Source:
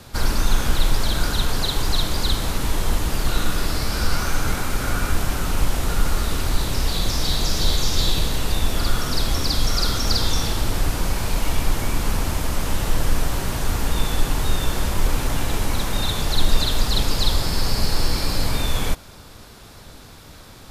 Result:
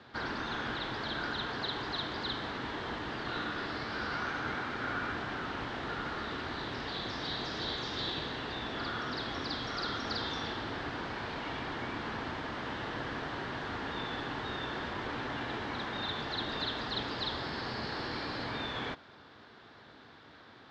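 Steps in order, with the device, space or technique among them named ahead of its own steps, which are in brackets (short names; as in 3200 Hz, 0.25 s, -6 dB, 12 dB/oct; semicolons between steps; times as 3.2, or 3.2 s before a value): kitchen radio (speaker cabinet 180–3700 Hz, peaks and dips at 180 Hz -7 dB, 550 Hz -4 dB, 1700 Hz +5 dB, 2500 Hz -5 dB); gain -7.5 dB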